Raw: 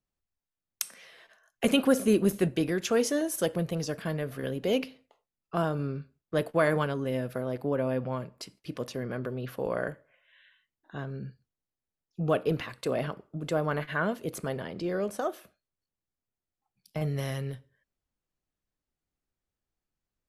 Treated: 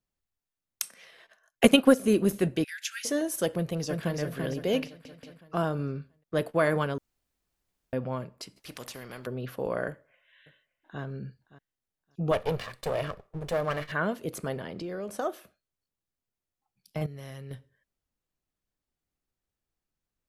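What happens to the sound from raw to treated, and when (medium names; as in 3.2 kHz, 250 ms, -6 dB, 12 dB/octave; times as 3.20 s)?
0.83–2.04 s: transient shaper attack +8 dB, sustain -6 dB
2.64–3.05 s: steep high-pass 1.5 kHz 72 dB/octave
3.56–4.19 s: echo throw 340 ms, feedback 45%, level -4.5 dB
4.87 s: stutter in place 0.18 s, 3 plays
6.98–7.93 s: room tone
8.56–9.27 s: spectrum-flattening compressor 2:1
9.89–11.01 s: echo throw 570 ms, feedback 15%, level -17 dB
12.31–13.92 s: comb filter that takes the minimum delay 1.7 ms
14.55–15.12 s: compression, threshold -32 dBFS
17.06–17.51 s: level held to a coarse grid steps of 14 dB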